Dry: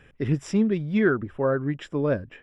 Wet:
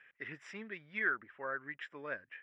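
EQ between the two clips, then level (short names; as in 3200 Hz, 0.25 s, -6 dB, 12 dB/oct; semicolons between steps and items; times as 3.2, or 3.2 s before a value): band-pass 1900 Hz, Q 2.9; 0.0 dB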